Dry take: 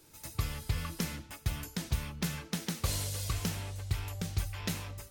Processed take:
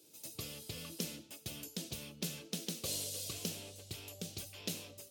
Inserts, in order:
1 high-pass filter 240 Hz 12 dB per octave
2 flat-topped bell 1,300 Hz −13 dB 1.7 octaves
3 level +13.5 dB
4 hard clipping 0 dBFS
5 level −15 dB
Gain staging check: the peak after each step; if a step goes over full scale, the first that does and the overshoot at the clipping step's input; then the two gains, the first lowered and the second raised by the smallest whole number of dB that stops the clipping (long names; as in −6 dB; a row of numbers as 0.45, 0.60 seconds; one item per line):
−18.5, −18.5, −5.0, −5.0, −20.0 dBFS
no step passes full scale